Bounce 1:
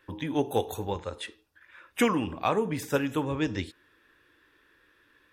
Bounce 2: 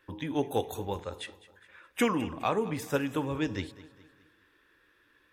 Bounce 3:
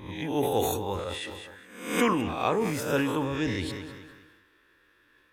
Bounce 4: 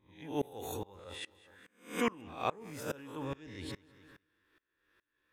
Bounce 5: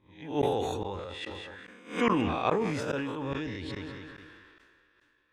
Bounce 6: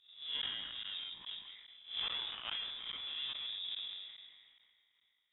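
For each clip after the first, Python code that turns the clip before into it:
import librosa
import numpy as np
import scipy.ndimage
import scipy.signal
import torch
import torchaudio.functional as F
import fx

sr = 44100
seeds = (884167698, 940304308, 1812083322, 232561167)

y1 = fx.echo_feedback(x, sr, ms=207, feedback_pct=45, wet_db=-18.0)
y1 = y1 * librosa.db_to_amplitude(-2.5)
y2 = fx.spec_swells(y1, sr, rise_s=0.61)
y2 = fx.sustainer(y2, sr, db_per_s=39.0)
y3 = fx.tremolo_decay(y2, sr, direction='swelling', hz=2.4, depth_db=25)
y3 = y3 * librosa.db_to_amplitude(-4.5)
y4 = scipy.signal.sosfilt(scipy.signal.butter(2, 4900.0, 'lowpass', fs=sr, output='sos'), y3)
y4 = fx.sustainer(y4, sr, db_per_s=27.0)
y4 = y4 * librosa.db_to_amplitude(4.5)
y5 = scipy.signal.medfilt(y4, 41)
y5 = fx.freq_invert(y5, sr, carrier_hz=3700)
y5 = fx.env_lowpass_down(y5, sr, base_hz=2000.0, full_db=-29.5)
y5 = y5 * librosa.db_to_amplitude(-2.5)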